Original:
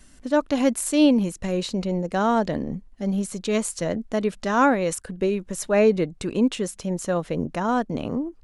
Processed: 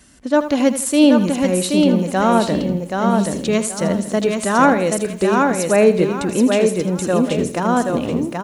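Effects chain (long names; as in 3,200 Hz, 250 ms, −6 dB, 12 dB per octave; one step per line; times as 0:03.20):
high-pass filter 64 Hz
repeating echo 778 ms, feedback 27%, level −3.5 dB
feedback echo at a low word length 81 ms, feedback 35%, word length 8 bits, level −12 dB
level +5 dB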